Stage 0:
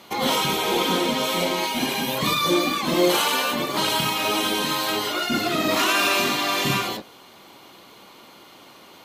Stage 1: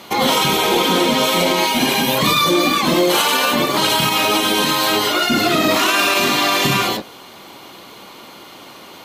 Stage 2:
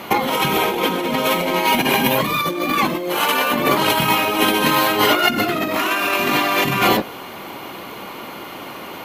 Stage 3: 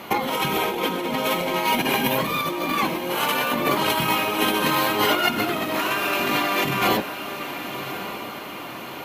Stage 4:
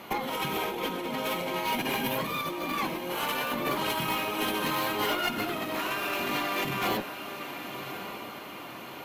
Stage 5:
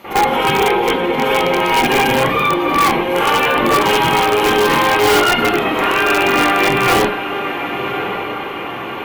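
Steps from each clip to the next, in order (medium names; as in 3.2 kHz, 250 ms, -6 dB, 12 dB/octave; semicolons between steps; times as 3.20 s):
peak limiter -14.5 dBFS, peak gain reduction 7.5 dB; trim +8.5 dB
high-order bell 5.6 kHz -8.5 dB; compressor with a negative ratio -20 dBFS, ratio -0.5; trim +3 dB
echo that smears into a reverb 1133 ms, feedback 50%, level -10.5 dB; trim -5 dB
valve stage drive 14 dB, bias 0.35; trim -6 dB
reverberation, pre-delay 43 ms, DRR -15.5 dB; in parallel at -4 dB: integer overflow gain 7 dB; on the sum: trim -2.5 dB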